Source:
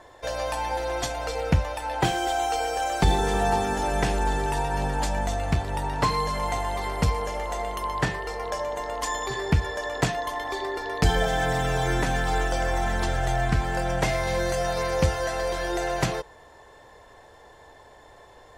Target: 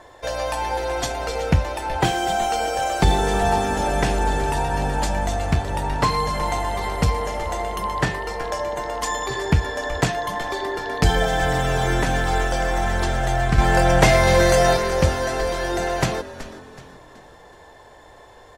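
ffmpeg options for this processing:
-filter_complex "[0:a]asettb=1/sr,asplit=3[s0][s1][s2];[s0]atrim=end=13.584[s3];[s1]atrim=start=13.58:end=14.77,asetpts=PTS-STARTPTS,afade=t=in:d=0.004:c=qsin,afade=t=out:st=1.186:d=0.004:c=qsin,acontrast=73[s4];[s2]atrim=start=14.766[s5];[s3][s4]acrossfade=d=0.004:c1=hsin:c2=qsin[s6];[s6][s5]acrossfade=d=0.004:c1=qsin:c2=hsin,asplit=2[s7][s8];[s8]asplit=4[s9][s10][s11][s12];[s9]adelay=375,afreqshift=-130,volume=0.2[s13];[s10]adelay=750,afreqshift=-260,volume=0.0841[s14];[s11]adelay=1125,afreqshift=-390,volume=0.0351[s15];[s12]adelay=1500,afreqshift=-520,volume=0.0148[s16];[s13][s14][s15][s16]amix=inputs=4:normalize=0[s17];[s7][s17]amix=inputs=2:normalize=0,volume=1.5"

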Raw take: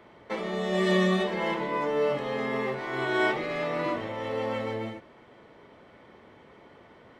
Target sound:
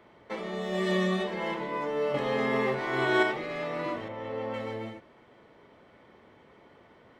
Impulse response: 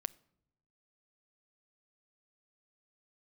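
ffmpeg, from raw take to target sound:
-filter_complex "[0:a]asettb=1/sr,asplit=3[s0][s1][s2];[s0]atrim=end=0.624[s3];[s1]atrim=start=0.62:end=1.04,asetpts=PTS-STARTPTS,afade=t=in:d=0.004:c=qsin,afade=t=out:st=0.416:d=0.004:c=qsin,aeval=exprs='sgn(val(0))*max(abs(val(0))-0.002,0)':c=same[s4];[s2]atrim=start=1.036[s5];[s3][s4]acrossfade=d=0.004:c1=hsin:c2=qsin[s6];[s6][s5]acrossfade=d=0.004:c1=qsin:c2=hsin,asettb=1/sr,asplit=3[s7][s8][s9];[s7]atrim=end=2.144[s10];[s8]atrim=start=2.14:end=3.23,asetpts=PTS-STARTPTS,afade=t=in:d=0.004:c=qsin,afade=t=out:st=1.086:d=0.004:c=qsin,acontrast=49[s11];[s9]atrim=start=3.226[s12];[s10][s11]acrossfade=d=0.004:c1=hsin:c2=qsin[s13];[s13][s12]acrossfade=d=0.004:c1=qsin:c2=hsin,asettb=1/sr,asplit=3[s14][s15][s16];[s14]atrim=end=4.084[s17];[s15]atrim=start=4.08:end=4.54,asetpts=PTS-STARTPTS,afade=t=in:d=0.004:c=qsin,afade=t=out:st=0.456:d=0.004:c=qsin,lowpass=f=2200:p=1[s18];[s16]atrim=start=4.536[s19];[s17][s18]acrossfade=d=0.004:c1=hsin:c2=qsin[s20];[s20][s19]acrossfade=d=0.004:c1=qsin:c2=hsin,volume=0.668"

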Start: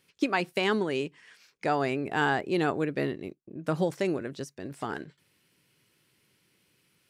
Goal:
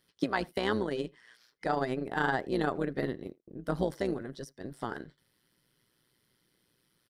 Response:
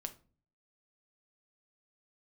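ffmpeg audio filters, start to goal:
-filter_complex "[0:a]superequalizer=12b=0.355:15b=0.501,tremolo=f=120:d=0.75,asplit=2[s0][s1];[s1]adelay=80,highpass=300,lowpass=3400,asoftclip=type=hard:threshold=0.0562,volume=0.0631[s2];[s0][s2]amix=inputs=2:normalize=0"

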